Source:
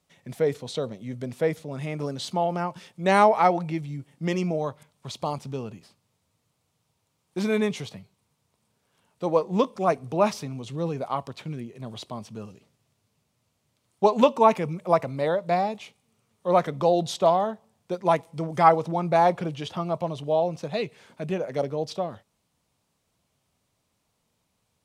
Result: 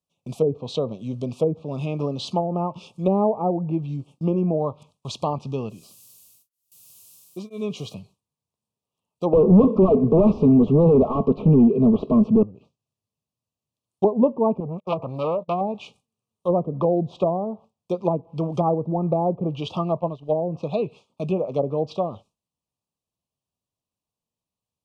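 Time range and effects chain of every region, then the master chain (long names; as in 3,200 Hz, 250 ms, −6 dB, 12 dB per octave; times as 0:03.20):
0:05.69–0:07.93: notch comb filter 890 Hz + background noise violet −49 dBFS + tremolo along a rectified sine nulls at 1 Hz
0:09.33–0:12.43: parametric band 790 Hz −12.5 dB + comb filter 4.6 ms + mid-hump overdrive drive 37 dB, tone 4,000 Hz, clips at −8.5 dBFS
0:14.60–0:15.61: noise gate −37 dBFS, range −31 dB + saturating transformer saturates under 3,200 Hz
0:19.99–0:20.47: downward expander −27 dBFS + high-shelf EQ 6,500 Hz −9.5 dB + upward compression, threshold −39 dBFS
whole clip: noise gate with hold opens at −42 dBFS; treble cut that deepens with the level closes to 440 Hz, closed at −20 dBFS; elliptic band-stop filter 1,200–2,500 Hz, stop band 40 dB; level +5 dB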